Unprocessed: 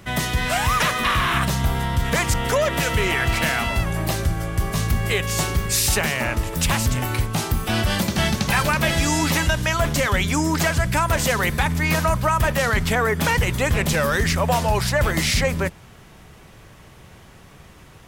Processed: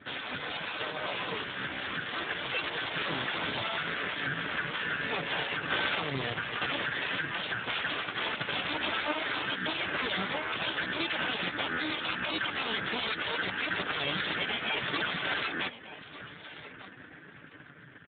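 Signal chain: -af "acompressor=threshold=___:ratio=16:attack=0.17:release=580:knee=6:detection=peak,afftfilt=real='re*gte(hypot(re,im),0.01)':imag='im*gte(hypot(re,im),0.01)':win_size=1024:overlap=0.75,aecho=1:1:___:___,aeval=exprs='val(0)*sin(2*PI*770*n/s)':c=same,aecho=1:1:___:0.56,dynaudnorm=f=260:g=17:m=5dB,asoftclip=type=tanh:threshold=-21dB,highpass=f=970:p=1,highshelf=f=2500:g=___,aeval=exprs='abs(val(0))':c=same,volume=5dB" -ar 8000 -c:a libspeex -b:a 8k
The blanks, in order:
-22dB, 1198, 0.133, 6.8, 9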